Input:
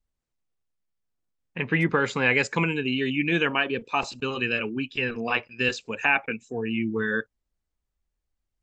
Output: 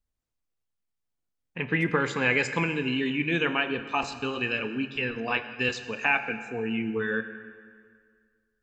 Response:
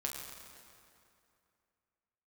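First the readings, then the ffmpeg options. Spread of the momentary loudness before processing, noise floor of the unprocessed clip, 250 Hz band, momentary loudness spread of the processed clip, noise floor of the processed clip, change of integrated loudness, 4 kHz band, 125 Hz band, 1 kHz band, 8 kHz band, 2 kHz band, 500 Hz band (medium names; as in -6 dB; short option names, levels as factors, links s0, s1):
8 LU, -83 dBFS, -2.0 dB, 7 LU, -81 dBFS, -2.0 dB, -2.0 dB, -2.5 dB, -2.0 dB, -2.0 dB, -2.0 dB, -2.0 dB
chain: -filter_complex "[0:a]asplit=2[s0][s1];[1:a]atrim=start_sample=2205,asetrate=57330,aresample=44100[s2];[s1][s2]afir=irnorm=-1:irlink=0,volume=0.794[s3];[s0][s3]amix=inputs=2:normalize=0,volume=0.501"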